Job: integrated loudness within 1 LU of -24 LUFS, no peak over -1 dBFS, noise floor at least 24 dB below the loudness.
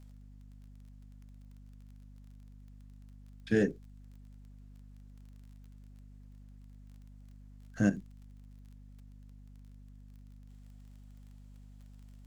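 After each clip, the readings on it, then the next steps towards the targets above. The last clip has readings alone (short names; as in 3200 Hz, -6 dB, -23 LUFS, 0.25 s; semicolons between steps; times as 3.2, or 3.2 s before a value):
ticks 24/s; hum 50 Hz; harmonics up to 250 Hz; hum level -50 dBFS; loudness -31.5 LUFS; peak -14.0 dBFS; loudness target -24.0 LUFS
-> de-click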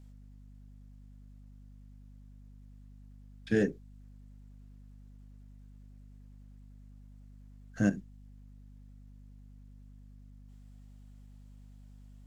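ticks 0/s; hum 50 Hz; harmonics up to 250 Hz; hum level -50 dBFS
-> de-hum 50 Hz, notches 5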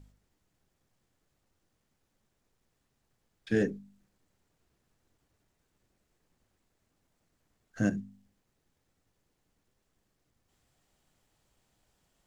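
hum none; loudness -32.0 LUFS; peak -14.5 dBFS; loudness target -24.0 LUFS
-> gain +8 dB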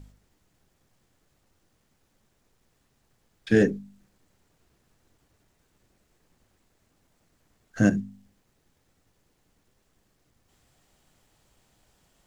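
loudness -24.5 LUFS; peak -6.5 dBFS; noise floor -71 dBFS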